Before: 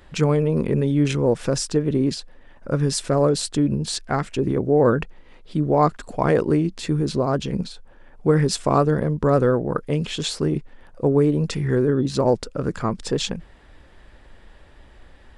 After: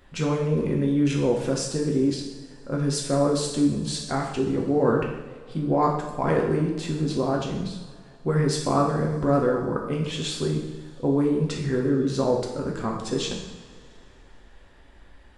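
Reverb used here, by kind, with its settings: two-slope reverb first 0.84 s, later 3.1 s, from -18 dB, DRR -1 dB; trim -6.5 dB

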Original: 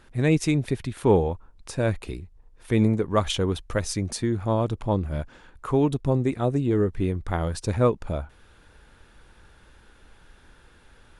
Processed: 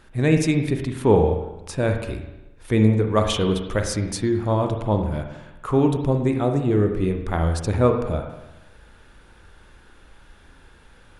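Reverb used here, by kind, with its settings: spring tank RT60 1 s, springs 37/48 ms, chirp 65 ms, DRR 4.5 dB; trim +2 dB

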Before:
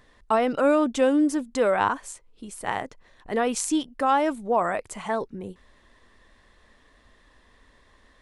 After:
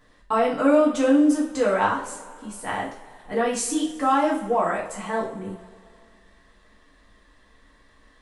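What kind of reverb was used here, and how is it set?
two-slope reverb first 0.42 s, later 2.5 s, from -20 dB, DRR -5.5 dB; trim -5.5 dB

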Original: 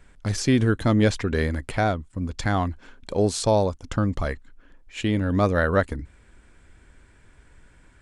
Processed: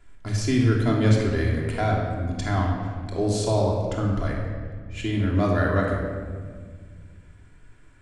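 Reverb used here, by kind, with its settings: simulated room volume 2300 m³, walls mixed, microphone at 3.1 m; trim -6.5 dB

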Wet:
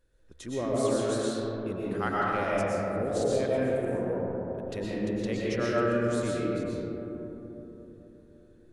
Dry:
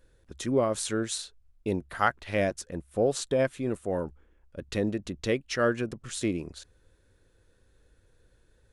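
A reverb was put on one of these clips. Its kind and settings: algorithmic reverb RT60 4 s, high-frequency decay 0.25×, pre-delay 80 ms, DRR -7 dB; trim -8.5 dB

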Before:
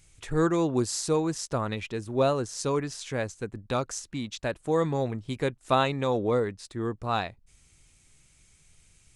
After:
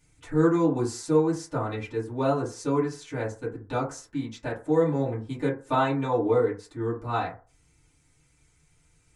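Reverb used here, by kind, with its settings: FDN reverb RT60 0.35 s, low-frequency decay 0.85×, high-frequency decay 0.3×, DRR -9.5 dB; trim -10.5 dB

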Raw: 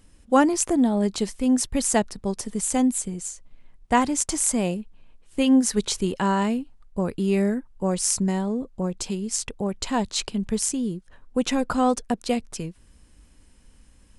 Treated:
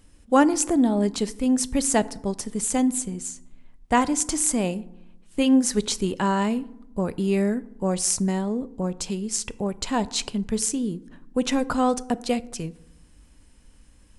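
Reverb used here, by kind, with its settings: FDN reverb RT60 0.85 s, low-frequency decay 1.45×, high-frequency decay 0.5×, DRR 16 dB

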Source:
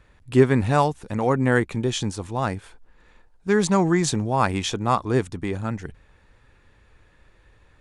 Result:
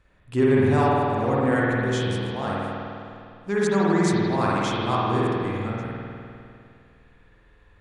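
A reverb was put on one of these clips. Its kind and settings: spring tank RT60 2.5 s, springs 50 ms, chirp 35 ms, DRR -6.5 dB; trim -7.5 dB

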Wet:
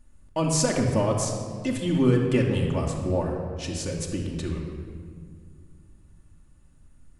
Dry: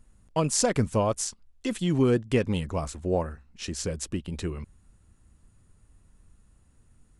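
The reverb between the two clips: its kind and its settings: simulated room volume 3500 m³, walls mixed, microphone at 2.5 m; trim -2 dB

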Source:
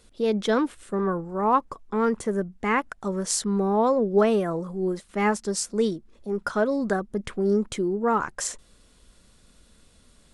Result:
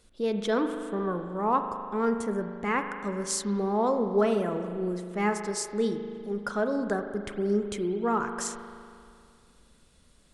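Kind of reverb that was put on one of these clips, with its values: spring tank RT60 2.3 s, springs 39 ms, chirp 70 ms, DRR 6.5 dB; trim -4.5 dB

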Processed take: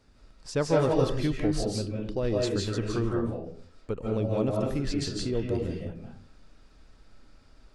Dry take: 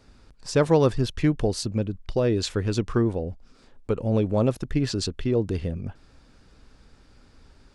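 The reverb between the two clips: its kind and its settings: algorithmic reverb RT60 0.52 s, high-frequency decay 0.6×, pre-delay 120 ms, DRR -2 dB; trim -7 dB

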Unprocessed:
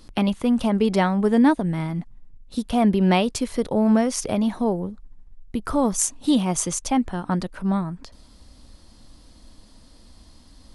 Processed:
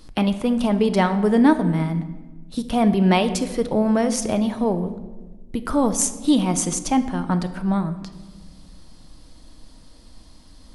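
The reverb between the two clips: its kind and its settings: simulated room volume 860 m³, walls mixed, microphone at 0.53 m; trim +1 dB

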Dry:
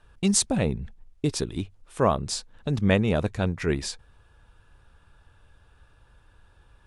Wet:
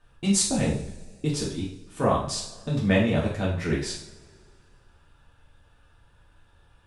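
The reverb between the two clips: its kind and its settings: two-slope reverb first 0.53 s, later 2.2 s, from -22 dB, DRR -5.5 dB; trim -6.5 dB

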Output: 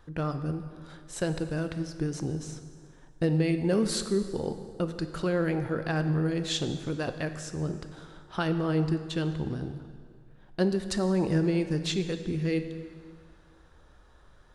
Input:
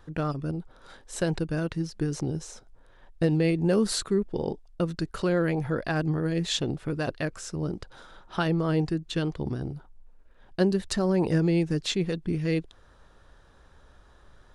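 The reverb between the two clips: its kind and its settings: plate-style reverb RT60 2.1 s, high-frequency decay 0.8×, DRR 8.5 dB; trim -2.5 dB

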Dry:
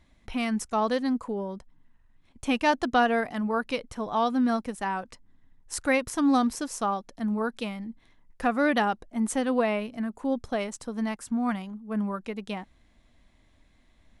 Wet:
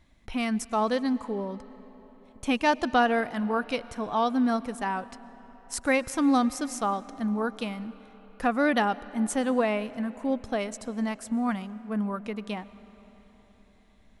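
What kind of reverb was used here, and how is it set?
algorithmic reverb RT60 4.6 s, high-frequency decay 0.65×, pre-delay 75 ms, DRR 17.5 dB

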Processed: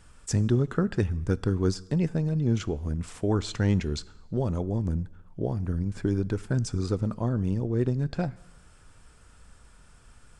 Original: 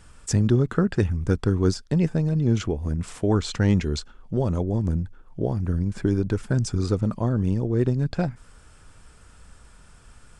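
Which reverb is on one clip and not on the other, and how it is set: plate-style reverb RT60 0.98 s, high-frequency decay 0.95×, DRR 19.5 dB; trim -4 dB

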